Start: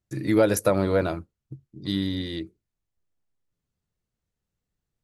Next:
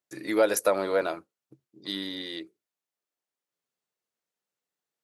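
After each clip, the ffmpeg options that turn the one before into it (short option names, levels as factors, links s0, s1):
-af "highpass=450"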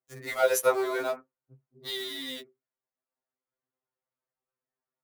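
-filter_complex "[0:a]acrossover=split=2000[s0][s1];[s1]acrusher=bits=6:mix=0:aa=0.000001[s2];[s0][s2]amix=inputs=2:normalize=0,afftfilt=real='re*2.45*eq(mod(b,6),0)':imag='im*2.45*eq(mod(b,6),0)':win_size=2048:overlap=0.75,volume=1.33"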